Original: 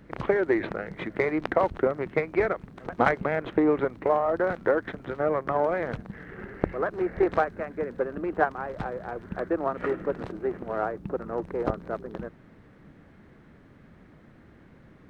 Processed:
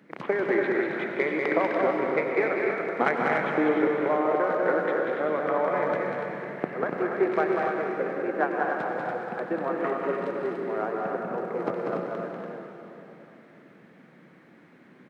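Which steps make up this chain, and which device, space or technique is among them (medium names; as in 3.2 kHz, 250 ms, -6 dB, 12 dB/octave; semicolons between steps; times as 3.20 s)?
stadium PA (high-pass 170 Hz 24 dB/octave; peaking EQ 2.2 kHz +4 dB 0.65 oct; loudspeakers at several distances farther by 66 m -4 dB, 87 m -9 dB, 99 m -6 dB; reverberation RT60 3.3 s, pre-delay 86 ms, DRR 3 dB); trim -3 dB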